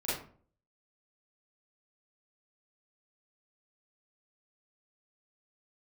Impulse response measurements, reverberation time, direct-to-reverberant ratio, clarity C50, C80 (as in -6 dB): 0.45 s, -11.5 dB, 0.5 dB, 7.5 dB